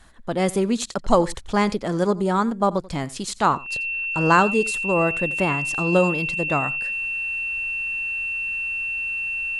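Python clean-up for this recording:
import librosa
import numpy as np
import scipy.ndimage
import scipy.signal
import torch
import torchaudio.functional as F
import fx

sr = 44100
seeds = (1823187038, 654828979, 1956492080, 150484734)

y = fx.notch(x, sr, hz=2700.0, q=30.0)
y = fx.fix_echo_inverse(y, sr, delay_ms=87, level_db=-20.0)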